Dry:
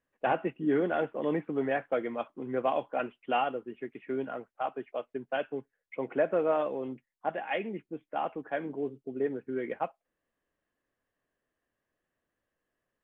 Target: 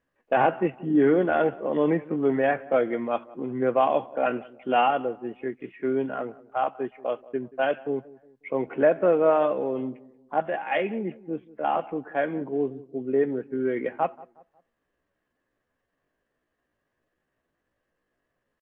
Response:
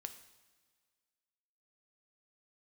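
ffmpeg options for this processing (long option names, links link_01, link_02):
-filter_complex "[0:a]lowpass=frequency=3200:poles=1,atempo=0.7,asplit=2[link_01][link_02];[link_02]adelay=181,lowpass=frequency=1300:poles=1,volume=-20dB,asplit=2[link_03][link_04];[link_04]adelay=181,lowpass=frequency=1300:poles=1,volume=0.42,asplit=2[link_05][link_06];[link_06]adelay=181,lowpass=frequency=1300:poles=1,volume=0.42[link_07];[link_01][link_03][link_05][link_07]amix=inputs=4:normalize=0,volume=7dB"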